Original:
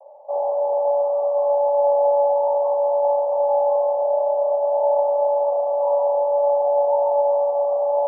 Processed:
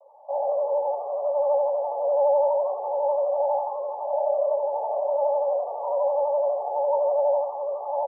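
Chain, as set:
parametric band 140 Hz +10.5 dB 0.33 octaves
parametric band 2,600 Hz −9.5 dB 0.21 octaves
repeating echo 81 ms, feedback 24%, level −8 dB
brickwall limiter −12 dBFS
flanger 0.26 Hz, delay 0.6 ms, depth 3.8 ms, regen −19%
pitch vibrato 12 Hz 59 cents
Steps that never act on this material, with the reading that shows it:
parametric band 140 Hz: nothing at its input below 450 Hz
parametric band 2,600 Hz: nothing at its input above 960 Hz

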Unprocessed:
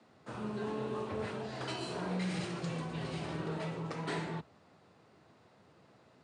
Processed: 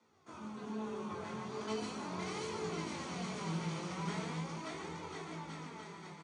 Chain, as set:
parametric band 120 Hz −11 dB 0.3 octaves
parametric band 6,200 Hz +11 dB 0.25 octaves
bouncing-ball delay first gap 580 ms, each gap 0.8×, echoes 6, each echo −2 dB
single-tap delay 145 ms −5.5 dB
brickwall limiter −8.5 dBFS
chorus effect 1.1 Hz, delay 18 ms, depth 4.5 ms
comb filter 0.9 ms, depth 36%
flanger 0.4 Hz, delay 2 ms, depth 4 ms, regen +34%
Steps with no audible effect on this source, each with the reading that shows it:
brickwall limiter −8.5 dBFS: peak of its input −20.0 dBFS

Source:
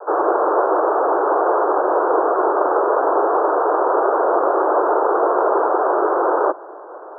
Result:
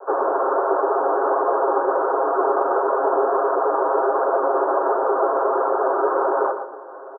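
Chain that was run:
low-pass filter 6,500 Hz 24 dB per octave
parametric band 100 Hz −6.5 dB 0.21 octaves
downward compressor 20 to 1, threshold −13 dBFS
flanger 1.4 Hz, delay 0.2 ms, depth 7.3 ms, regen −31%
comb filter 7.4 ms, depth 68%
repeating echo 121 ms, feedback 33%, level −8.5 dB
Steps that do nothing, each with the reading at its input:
low-pass filter 6,500 Hz: nothing at its input above 1,700 Hz
parametric band 100 Hz: nothing at its input below 250 Hz

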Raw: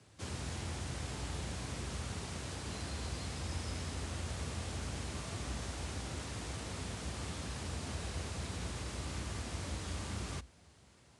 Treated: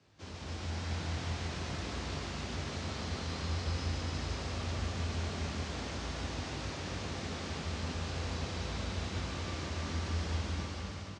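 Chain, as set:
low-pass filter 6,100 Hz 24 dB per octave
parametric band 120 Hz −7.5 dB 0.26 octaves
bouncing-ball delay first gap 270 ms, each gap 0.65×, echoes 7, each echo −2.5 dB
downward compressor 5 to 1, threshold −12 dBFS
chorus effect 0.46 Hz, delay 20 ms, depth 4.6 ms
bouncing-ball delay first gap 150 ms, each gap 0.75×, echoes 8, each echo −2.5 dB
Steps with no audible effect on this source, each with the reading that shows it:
downward compressor, threshold −12 dBFS: peak of its input −23.0 dBFS

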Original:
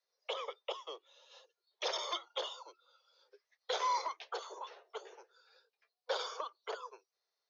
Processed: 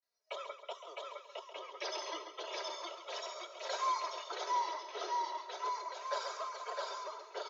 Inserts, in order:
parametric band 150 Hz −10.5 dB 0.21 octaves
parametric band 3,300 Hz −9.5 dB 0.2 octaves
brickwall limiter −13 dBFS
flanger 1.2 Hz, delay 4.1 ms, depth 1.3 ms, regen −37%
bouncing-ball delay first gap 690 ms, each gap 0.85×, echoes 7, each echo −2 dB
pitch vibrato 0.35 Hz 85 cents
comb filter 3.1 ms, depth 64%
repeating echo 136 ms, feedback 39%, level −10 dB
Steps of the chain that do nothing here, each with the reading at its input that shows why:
parametric band 150 Hz: nothing at its input below 320 Hz
brickwall limiter −13 dBFS: peak of its input −23.5 dBFS

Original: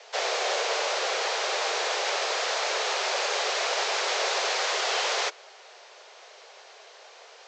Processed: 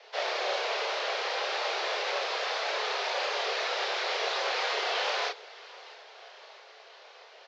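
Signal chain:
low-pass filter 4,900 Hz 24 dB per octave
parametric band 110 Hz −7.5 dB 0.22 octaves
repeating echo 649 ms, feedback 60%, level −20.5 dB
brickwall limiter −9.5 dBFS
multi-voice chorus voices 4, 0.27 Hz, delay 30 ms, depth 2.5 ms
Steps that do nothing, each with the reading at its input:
parametric band 110 Hz: nothing at its input below 300 Hz
brickwall limiter −9.5 dBFS: peak of its input −14.5 dBFS

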